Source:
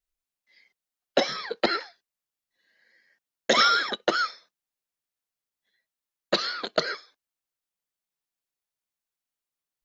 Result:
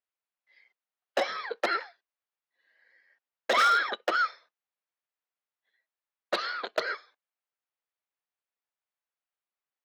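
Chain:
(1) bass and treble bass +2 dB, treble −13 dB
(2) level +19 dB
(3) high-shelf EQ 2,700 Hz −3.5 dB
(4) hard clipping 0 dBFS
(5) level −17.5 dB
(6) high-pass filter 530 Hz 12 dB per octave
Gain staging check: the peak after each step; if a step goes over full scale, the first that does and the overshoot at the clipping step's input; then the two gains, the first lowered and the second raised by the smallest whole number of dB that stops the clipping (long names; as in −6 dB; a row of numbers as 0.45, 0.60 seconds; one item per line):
−9.5, +9.5, +9.5, 0.0, −17.5, −12.0 dBFS
step 2, 9.5 dB
step 2 +9 dB, step 5 −7.5 dB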